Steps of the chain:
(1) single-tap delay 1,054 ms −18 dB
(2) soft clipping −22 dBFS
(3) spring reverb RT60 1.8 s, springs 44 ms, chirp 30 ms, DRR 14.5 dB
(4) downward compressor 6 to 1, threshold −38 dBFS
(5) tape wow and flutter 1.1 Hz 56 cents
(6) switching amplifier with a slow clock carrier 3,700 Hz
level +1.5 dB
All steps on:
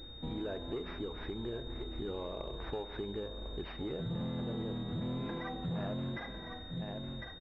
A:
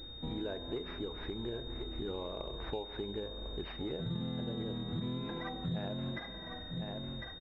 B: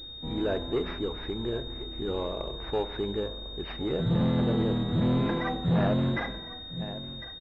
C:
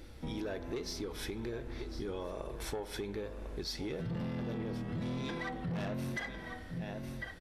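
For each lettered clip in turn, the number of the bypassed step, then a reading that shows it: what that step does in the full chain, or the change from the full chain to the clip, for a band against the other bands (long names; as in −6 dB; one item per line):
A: 2, distortion level −9 dB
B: 4, average gain reduction 7.0 dB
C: 6, 2 kHz band +5.0 dB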